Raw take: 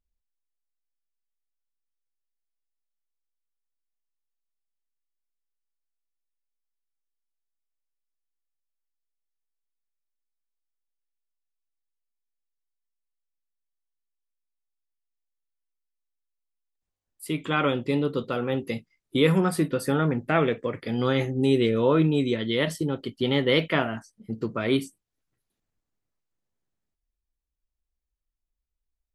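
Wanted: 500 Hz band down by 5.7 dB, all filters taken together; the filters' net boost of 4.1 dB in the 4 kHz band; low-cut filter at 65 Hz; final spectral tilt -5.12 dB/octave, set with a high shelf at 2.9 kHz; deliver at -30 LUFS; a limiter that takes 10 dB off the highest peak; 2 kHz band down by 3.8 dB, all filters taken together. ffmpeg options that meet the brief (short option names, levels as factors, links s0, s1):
-af "highpass=65,equalizer=f=500:t=o:g=-7,equalizer=f=2000:t=o:g=-8,highshelf=f=2900:g=6,equalizer=f=4000:t=o:g=4.5,volume=0.944,alimiter=limit=0.119:level=0:latency=1"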